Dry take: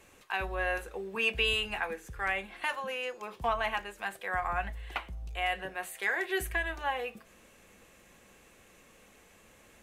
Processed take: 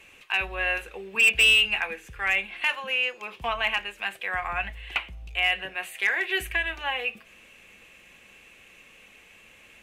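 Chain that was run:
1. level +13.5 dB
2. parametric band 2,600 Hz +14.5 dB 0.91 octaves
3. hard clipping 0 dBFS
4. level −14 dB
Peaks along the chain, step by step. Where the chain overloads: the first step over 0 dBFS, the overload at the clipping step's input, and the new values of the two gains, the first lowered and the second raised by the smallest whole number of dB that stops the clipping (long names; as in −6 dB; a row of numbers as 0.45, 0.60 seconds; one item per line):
−3.5, +9.0, 0.0, −14.0 dBFS
step 2, 9.0 dB
step 1 +4.5 dB, step 4 −5 dB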